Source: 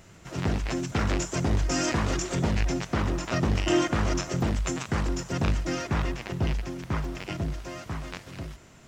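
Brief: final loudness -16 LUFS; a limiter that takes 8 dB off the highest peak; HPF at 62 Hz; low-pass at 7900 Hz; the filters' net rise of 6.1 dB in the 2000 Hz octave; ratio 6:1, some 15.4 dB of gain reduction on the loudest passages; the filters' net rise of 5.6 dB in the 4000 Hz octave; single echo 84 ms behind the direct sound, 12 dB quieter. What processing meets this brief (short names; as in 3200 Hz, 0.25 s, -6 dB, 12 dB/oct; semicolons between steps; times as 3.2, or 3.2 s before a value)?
HPF 62 Hz; LPF 7900 Hz; bell 2000 Hz +6 dB; bell 4000 Hz +6 dB; compressor 6:1, threshold -35 dBFS; limiter -27.5 dBFS; echo 84 ms -12 dB; gain +23 dB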